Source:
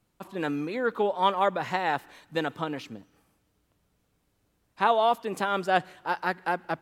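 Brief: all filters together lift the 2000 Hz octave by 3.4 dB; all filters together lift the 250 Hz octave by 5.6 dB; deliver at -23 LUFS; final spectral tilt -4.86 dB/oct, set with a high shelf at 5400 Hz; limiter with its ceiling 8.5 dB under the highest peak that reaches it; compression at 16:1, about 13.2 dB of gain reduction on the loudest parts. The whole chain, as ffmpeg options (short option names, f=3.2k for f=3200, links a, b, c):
-af "equalizer=f=250:t=o:g=7.5,equalizer=f=2k:t=o:g=3.5,highshelf=f=5.4k:g=9,acompressor=threshold=-30dB:ratio=16,volume=14dB,alimiter=limit=-10dB:level=0:latency=1"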